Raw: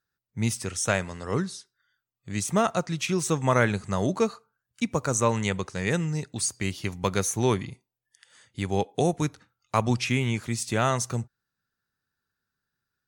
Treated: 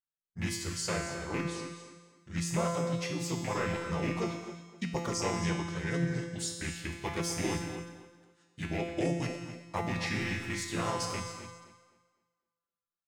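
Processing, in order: rattle on loud lows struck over -24 dBFS, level -19 dBFS; gate -54 dBFS, range -15 dB; hum notches 60/120/180/240/300/360 Hz; dynamic bell 330 Hz, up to +3 dB, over -40 dBFS, Q 3.5; harmony voices -4 st 0 dB, -3 st -1 dB; in parallel at 0 dB: peak limiter -14.5 dBFS, peak gain reduction 11.5 dB; on the sum: feedback comb 170 Hz, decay 1.2 s, mix 90%; gated-style reverb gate 300 ms rising, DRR 11 dB; gain riding 2 s; on a send: tape echo 256 ms, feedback 32%, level -13 dB, low-pass 3.2 kHz; on the sum: trim -1.5 dB

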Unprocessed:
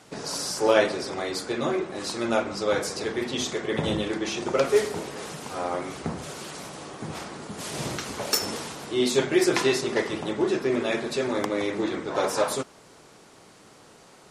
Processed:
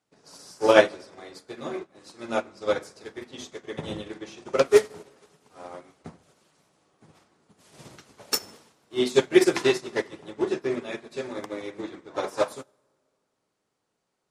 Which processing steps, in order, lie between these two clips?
plate-style reverb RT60 2.5 s, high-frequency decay 0.65×, DRR 11.5 dB; upward expansion 2.5:1, over -38 dBFS; trim +6 dB

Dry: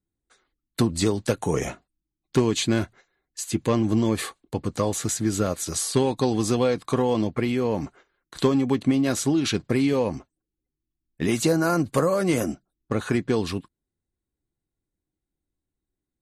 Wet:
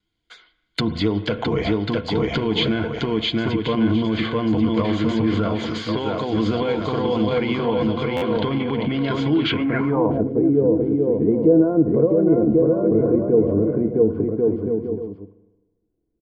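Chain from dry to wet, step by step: vibrato 0.45 Hz 8 cents; bouncing-ball echo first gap 660 ms, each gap 0.65×, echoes 5; low-pass that closes with the level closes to 2.5 kHz, closed at -22 dBFS; spring tank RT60 1.1 s, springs 36/50 ms, chirp 60 ms, DRR 16 dB; peak limiter -18 dBFS, peak gain reduction 10.5 dB; 5.60–6.33 s: bass shelf 160 Hz -7.5 dB; low-pass sweep 3.5 kHz -> 450 Hz, 9.46–10.31 s; rippled EQ curve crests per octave 1.8, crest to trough 9 dB; buffer glitch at 8.16 s, samples 512, times 4; tape noise reduction on one side only encoder only; trim +4.5 dB

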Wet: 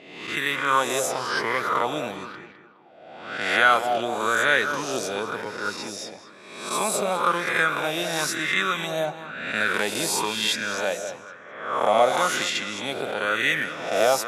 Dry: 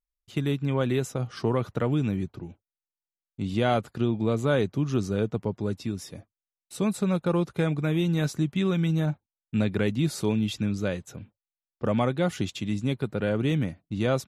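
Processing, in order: reverse spectral sustain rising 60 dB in 1.13 s; high-pass 370 Hz 6 dB/octave; level-controlled noise filter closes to 2.5 kHz, open at -24.5 dBFS; tilt EQ +3 dB/octave; on a send: tape echo 207 ms, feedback 45%, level -8.5 dB, low-pass 2.5 kHz; on the sum: sweeping bell 1 Hz 650–1900 Hz +15 dB

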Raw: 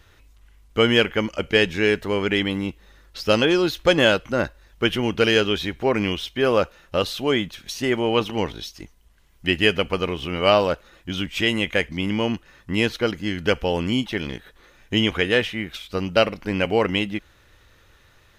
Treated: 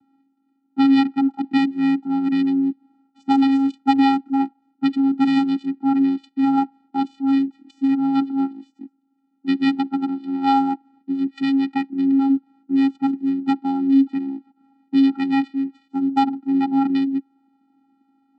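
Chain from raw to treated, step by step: local Wiener filter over 25 samples; vocoder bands 8, square 272 Hz; trim +4 dB

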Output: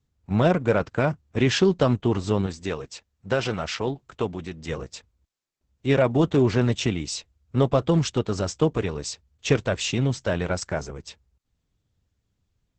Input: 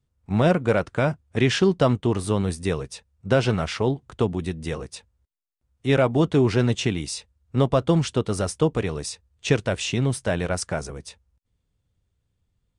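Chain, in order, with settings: 2.46–4.69 s: bass shelf 410 Hz -7 dB; Opus 10 kbps 48 kHz

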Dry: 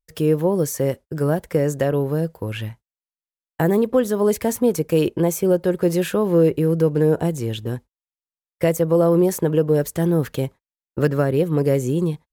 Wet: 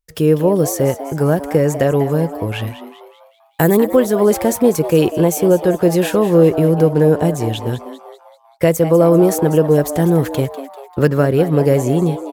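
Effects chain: 2.67–3.77 s: treble shelf 3.9 kHz +10.5 dB; frequency-shifting echo 196 ms, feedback 49%, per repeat +140 Hz, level -13 dB; trim +5 dB

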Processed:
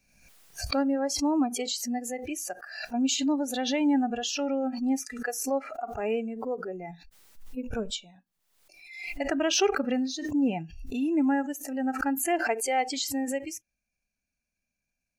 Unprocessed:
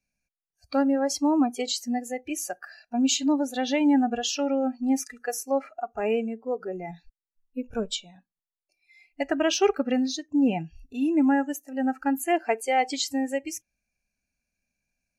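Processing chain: swell ahead of each attack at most 62 dB/s; trim -3.5 dB

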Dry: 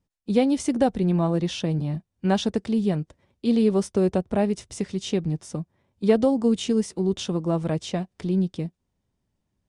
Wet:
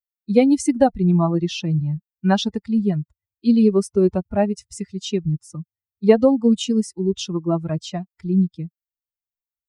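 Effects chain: expander on every frequency bin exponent 2; trim +8 dB

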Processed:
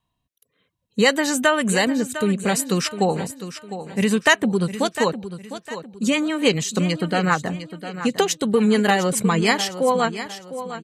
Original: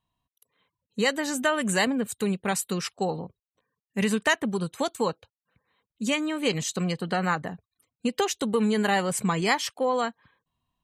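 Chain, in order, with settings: rotary cabinet horn 0.6 Hz, later 7 Hz, at 4.12 s; on a send: feedback delay 705 ms, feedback 35%, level -12 dB; on the sum: trim +8 dB

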